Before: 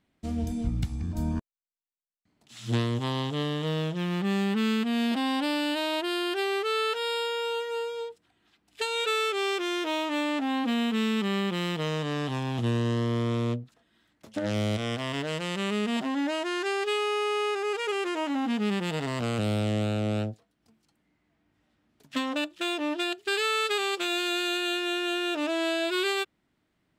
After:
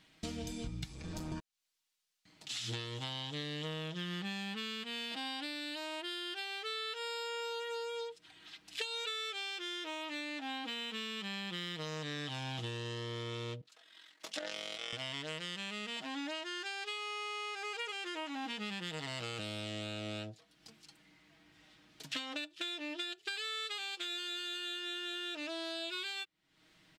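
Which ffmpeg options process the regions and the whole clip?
ffmpeg -i in.wav -filter_complex "[0:a]asettb=1/sr,asplit=3[link_01][link_02][link_03];[link_01]atrim=end=0.914[link_04];[link_02]atrim=start=0.91:end=1.32,asetpts=PTS-STARTPTS,afade=type=in:duration=0.004:curve=qsin,afade=type=out:start_time=0.406:duration=0.004:curve=qsin,bandreject=frequency=50:width_type=h:width=6,bandreject=frequency=100:width_type=h:width=6,bandreject=frequency=150:width_type=h:width=6,bandreject=frequency=200:width_type=h:width=6,bandreject=frequency=250:width_type=h:width=6,bandreject=frequency=300:width_type=h:width=6,bandreject=frequency=350:width_type=h:width=6,bandreject=frequency=400:width_type=h:width=6,bandreject=frequency=450:width_type=h:width=6,acrossover=split=95|320[link_05][link_06][link_07];[link_05]acompressor=threshold=-36dB:ratio=4[link_08];[link_06]acompressor=threshold=-37dB:ratio=4[link_09];[link_07]acompressor=threshold=-46dB:ratio=4[link_10];[link_08][link_09][link_10]amix=inputs=3:normalize=0,volume=34dB,asoftclip=hard,volume=-34dB[link_11];[link_03]atrim=start=1.316[link_12];[link_04][link_11]acrossfade=duration=0.004:curve1=hsin:curve2=qsin[link_13];[link_13][link_12]acrossfade=duration=0.004:curve1=qsin:curve2=hsin,asettb=1/sr,asplit=3[link_14][link_15][link_16];[link_14]atrim=end=13.614[link_17];[link_15]atrim=start=13.61:end=14.93,asetpts=PTS-STARTPTS,afade=type=in:duration=0.004:curve=qsin,afade=type=out:start_time=1.316:duration=0.004:curve=qsin,highpass=480,tremolo=f=44:d=0.75[link_18];[link_16]atrim=start=14.926[link_19];[link_17][link_18]acrossfade=duration=0.004:curve1=hsin:curve2=qsin[link_20];[link_20][link_19]acrossfade=duration=0.004:curve1=qsin:curve2=hsin,equalizer=frequency=4100:width=0.42:gain=13,aecho=1:1:6.3:0.57,acompressor=threshold=-41dB:ratio=8,volume=2.5dB" out.wav

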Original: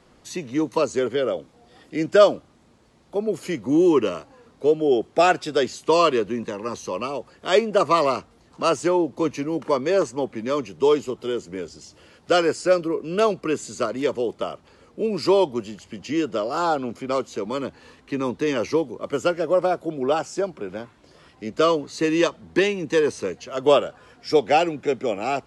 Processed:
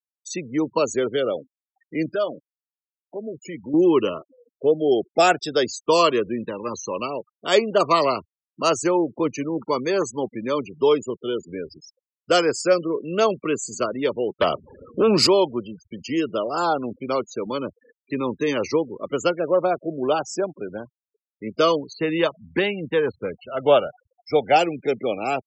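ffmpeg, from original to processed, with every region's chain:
ffmpeg -i in.wav -filter_complex "[0:a]asettb=1/sr,asplit=3[link_01][link_02][link_03];[link_01]atrim=end=2.104[link_04];[link_02]atrim=start=2.1:end=3.74,asetpts=PTS-STARTPTS,afade=type=in:duration=0.004:curve=qsin,afade=type=out:start_time=1.636:duration=0.004:curve=qsin,acompressor=threshold=-41dB:ratio=1.5:attack=3.2:release=140:knee=1:detection=peak,asplit=2[link_05][link_06];[link_06]adelay=13,volume=-12.5dB[link_07];[link_05][link_07]amix=inputs=2:normalize=0,atrim=end_sample=72324[link_08];[link_03]atrim=start=3.736[link_09];[link_04][link_08]acrossfade=duration=0.004:curve1=hsin:curve2=qsin[link_10];[link_10][link_09]acrossfade=duration=0.004:curve1=qsin:curve2=hsin,asettb=1/sr,asplit=3[link_11][link_12][link_13];[link_11]atrim=end=9.494[link_14];[link_12]atrim=start=9.49:end=10.23,asetpts=PTS-STARTPTS,afade=type=in:duration=0.004:curve=qsin,afade=type=out:start_time=0.736:duration=0.004:curve=qsin,agate=range=-33dB:threshold=-39dB:ratio=3:release=100:detection=peak,equalizer=frequency=590:width=4.5:gain=-6[link_15];[link_13]atrim=start=10.226[link_16];[link_14][link_15]acrossfade=duration=0.004:curve1=hsin:curve2=qsin[link_17];[link_17][link_16]acrossfade=duration=0.004:curve1=qsin:curve2=hsin,asettb=1/sr,asplit=3[link_18][link_19][link_20];[link_18]atrim=end=14.414[link_21];[link_19]atrim=start=14.41:end=15.27,asetpts=PTS-STARTPTS,afade=type=in:duration=0.004:curve=qsin,afade=type=out:start_time=0.856:duration=0.004:curve=qsin,aeval=exprs='0.237*sin(PI/2*2*val(0)/0.237)':channel_layout=same,highpass=49[link_22];[link_20]atrim=start=15.266[link_23];[link_21][link_22]acrossfade=duration=0.004:curve1=hsin:curve2=qsin[link_24];[link_24][link_23]acrossfade=duration=0.004:curve1=qsin:curve2=hsin,asettb=1/sr,asplit=3[link_25][link_26][link_27];[link_25]atrim=end=21.934[link_28];[link_26]atrim=start=21.93:end=24.56,asetpts=PTS-STARTPTS,afade=type=in:duration=0.004:curve=qsin,afade=type=out:start_time=2.626:duration=0.004:curve=qsin,lowpass=3000,aecho=1:1:1.4:0.35,atrim=end_sample=115983[link_29];[link_27]atrim=start=24.556[link_30];[link_28][link_29]acrossfade=duration=0.004:curve1=hsin:curve2=qsin[link_31];[link_31][link_30]acrossfade=duration=0.004:curve1=qsin:curve2=hsin,afftfilt=real='re*gte(hypot(re,im),0.0224)':imag='im*gte(hypot(re,im),0.0224)':win_size=1024:overlap=0.75,highshelf=frequency=5300:gain=11" out.wav

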